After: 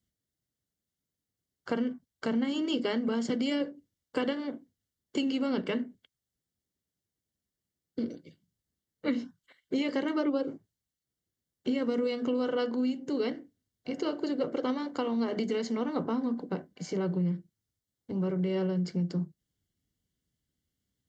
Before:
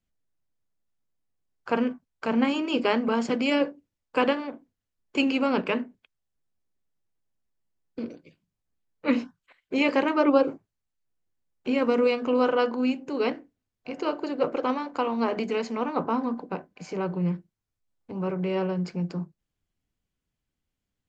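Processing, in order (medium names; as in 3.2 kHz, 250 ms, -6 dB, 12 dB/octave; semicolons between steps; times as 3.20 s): high-pass 62 Hz; peaking EQ 980 Hz -11 dB 1.6 oct; compression 5:1, threshold -30 dBFS, peak gain reduction 10.5 dB; Butterworth band-stop 2.5 kHz, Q 4.9; trim +3.5 dB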